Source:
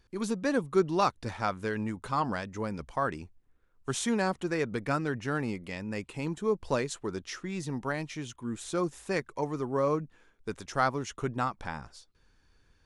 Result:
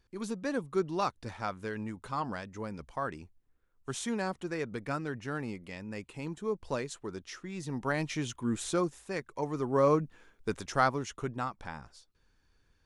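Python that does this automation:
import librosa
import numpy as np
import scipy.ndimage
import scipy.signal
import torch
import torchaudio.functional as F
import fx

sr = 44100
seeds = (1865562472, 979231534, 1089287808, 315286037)

y = fx.gain(x, sr, db=fx.line((7.53, -5.0), (8.08, 4.0), (8.66, 4.0), (9.06, -6.5), (9.85, 3.0), (10.55, 3.0), (11.4, -4.5)))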